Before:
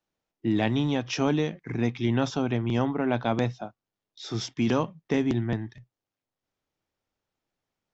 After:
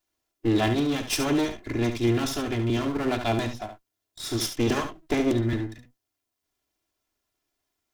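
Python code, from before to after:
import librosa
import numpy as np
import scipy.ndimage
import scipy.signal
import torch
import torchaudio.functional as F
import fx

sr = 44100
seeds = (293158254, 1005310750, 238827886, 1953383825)

y = fx.lower_of_two(x, sr, delay_ms=2.9)
y = fx.high_shelf(y, sr, hz=5000.0, db=9.5)
y = y + 10.0 ** (-9.0 / 20.0) * np.pad(y, (int(71 * sr / 1000.0), 0))[:len(y)]
y = F.gain(torch.from_numpy(y), 2.5).numpy()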